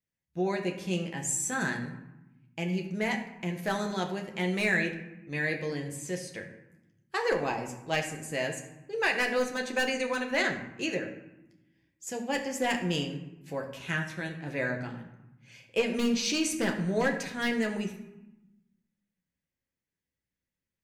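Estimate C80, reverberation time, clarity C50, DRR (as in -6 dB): 11.0 dB, 1.0 s, 8.5 dB, 2.0 dB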